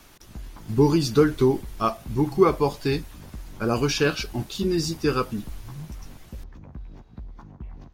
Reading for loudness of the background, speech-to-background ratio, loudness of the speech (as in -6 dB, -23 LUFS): -43.0 LUFS, 19.5 dB, -23.5 LUFS